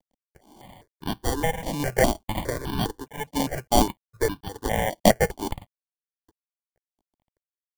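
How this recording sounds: aliases and images of a low sample rate 1.3 kHz, jitter 0%; chopped level 0.6 Hz, depth 60%, duty 50%; a quantiser's noise floor 12-bit, dither none; notches that jump at a steady rate 4.9 Hz 390–2000 Hz

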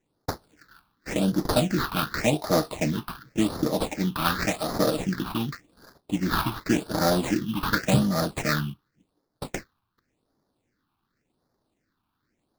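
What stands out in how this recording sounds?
aliases and images of a low sample rate 3.1 kHz, jitter 20%; phasing stages 6, 0.89 Hz, lowest notch 510–2600 Hz

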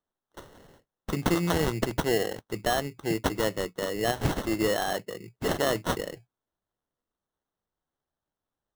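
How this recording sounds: aliases and images of a low sample rate 2.4 kHz, jitter 0%

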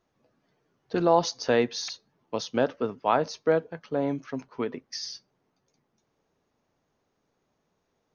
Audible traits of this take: noise floor -76 dBFS; spectral tilt -4.5 dB/octave

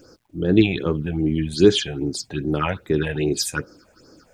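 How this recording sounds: phasing stages 6, 2.5 Hz, lowest notch 310–3100 Hz; a quantiser's noise floor 12-bit, dither none

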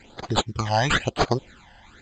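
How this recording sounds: aliases and images of a low sample rate 5.5 kHz, jitter 0%; phasing stages 12, 1 Hz, lowest notch 390–2700 Hz; µ-law

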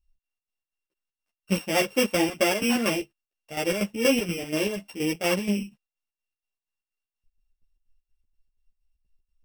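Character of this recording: a buzz of ramps at a fixed pitch in blocks of 16 samples; chopped level 4.2 Hz, depth 65%, duty 60%; a shimmering, thickened sound

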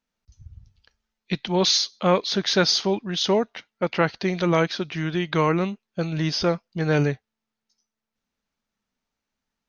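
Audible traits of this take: noise floor -85 dBFS; spectral tilt -4.5 dB/octave

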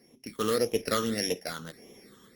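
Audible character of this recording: a buzz of ramps at a fixed pitch in blocks of 8 samples; phasing stages 8, 1.7 Hz, lowest notch 670–1400 Hz; random-step tremolo 3.5 Hz; Opus

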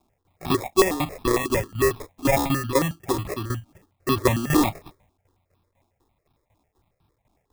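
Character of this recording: a quantiser's noise floor 12-bit, dither triangular; tremolo saw down 4 Hz, depth 80%; aliases and images of a low sample rate 1.5 kHz, jitter 0%; notches that jump at a steady rate 11 Hz 500–2000 Hz

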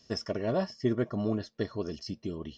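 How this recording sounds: noise floor -66 dBFS; spectral tilt -6.0 dB/octave

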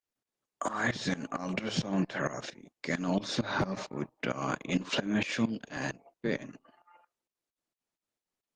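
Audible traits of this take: tremolo saw up 4.4 Hz, depth 90%; Opus

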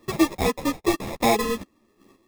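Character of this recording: chopped level 1 Hz, depth 60%, duty 15%; aliases and images of a low sample rate 1.5 kHz, jitter 0%; a shimmering, thickened sound

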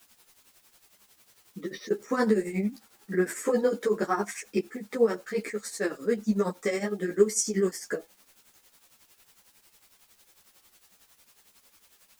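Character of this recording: a quantiser's noise floor 10-bit, dither triangular; tremolo triangle 11 Hz, depth 80%; a shimmering, thickened sound

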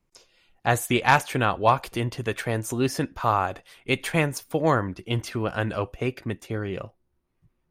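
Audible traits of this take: noise floor -74 dBFS; spectral tilt -5.0 dB/octave

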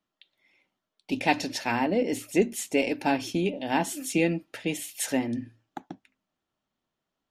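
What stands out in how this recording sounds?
noise floor -85 dBFS; spectral tilt -4.0 dB/octave

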